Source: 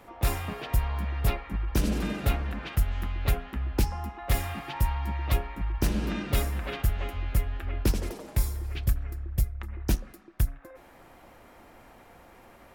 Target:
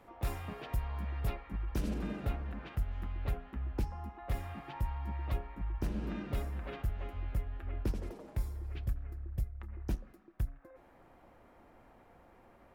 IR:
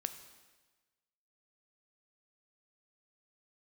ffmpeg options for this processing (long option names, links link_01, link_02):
-af "alimiter=limit=-18dB:level=0:latency=1:release=378,asetnsamples=nb_out_samples=441:pad=0,asendcmd='1.94 highshelf g -12',highshelf=frequency=2400:gain=-6,volume=-6.5dB"